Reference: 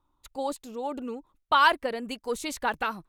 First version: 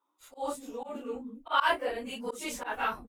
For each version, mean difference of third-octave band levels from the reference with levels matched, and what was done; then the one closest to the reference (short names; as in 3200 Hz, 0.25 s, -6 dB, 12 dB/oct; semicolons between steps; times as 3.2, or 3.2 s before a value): 5.5 dB: phase scrambler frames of 0.1 s; bell 4300 Hz -9.5 dB 0.24 oct; bands offset in time highs, lows 0.2 s, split 260 Hz; auto swell 0.115 s; gain -1 dB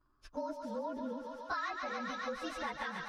9.5 dB: inharmonic rescaling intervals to 111%; air absorption 100 m; thinning echo 0.14 s, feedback 83%, high-pass 490 Hz, level -8 dB; compressor 6:1, threshold -40 dBFS, peak gain reduction 17.5 dB; gain +3.5 dB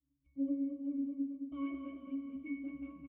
14.0 dB: vocal tract filter i; octave resonator C#, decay 0.64 s; feedback echo 0.218 s, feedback 53%, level -6 dB; spring tank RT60 1.9 s, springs 31/37 ms, chirp 65 ms, DRR 6.5 dB; gain +16 dB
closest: first